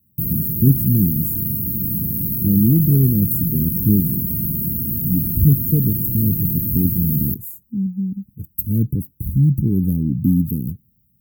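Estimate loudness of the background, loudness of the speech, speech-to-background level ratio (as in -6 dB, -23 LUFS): -20.0 LUFS, -19.5 LUFS, 0.5 dB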